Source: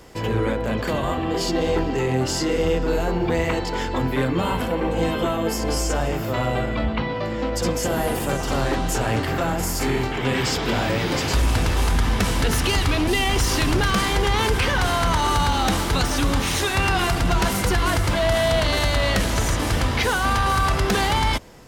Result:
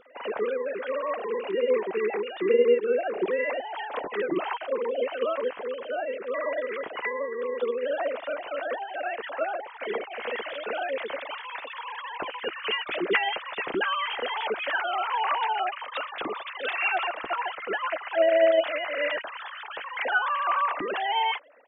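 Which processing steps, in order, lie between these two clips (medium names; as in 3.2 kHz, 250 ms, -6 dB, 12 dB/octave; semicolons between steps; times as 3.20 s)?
formants replaced by sine waves; harmony voices -12 st -18 dB, -3 st -13 dB; trim -7.5 dB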